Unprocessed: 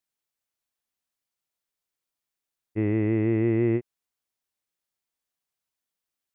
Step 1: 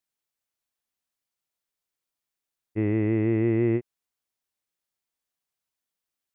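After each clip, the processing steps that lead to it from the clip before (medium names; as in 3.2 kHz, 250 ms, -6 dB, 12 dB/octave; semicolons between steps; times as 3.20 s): no audible change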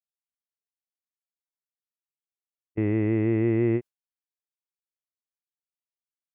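gate with hold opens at -22 dBFS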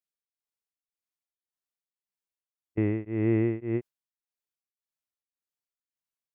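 tremolo of two beating tones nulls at 1.8 Hz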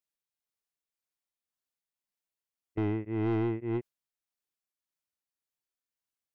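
saturation -24.5 dBFS, distortion -11 dB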